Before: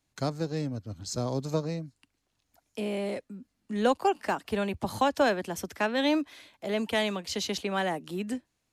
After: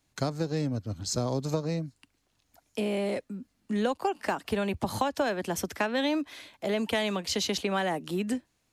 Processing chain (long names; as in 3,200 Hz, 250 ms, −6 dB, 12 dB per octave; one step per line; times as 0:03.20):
downward compressor 6 to 1, threshold −29 dBFS, peak gain reduction 10 dB
level +4.5 dB